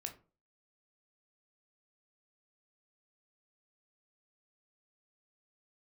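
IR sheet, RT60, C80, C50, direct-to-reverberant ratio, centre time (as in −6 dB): 0.35 s, 18.5 dB, 13.0 dB, 4.0 dB, 12 ms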